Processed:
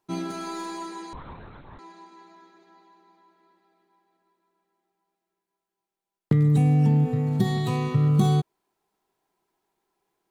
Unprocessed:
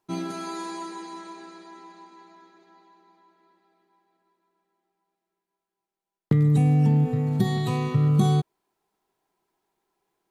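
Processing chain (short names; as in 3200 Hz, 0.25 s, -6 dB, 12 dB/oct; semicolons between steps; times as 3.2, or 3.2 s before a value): tracing distortion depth 0.027 ms; 1.13–1.79 LPC vocoder at 8 kHz whisper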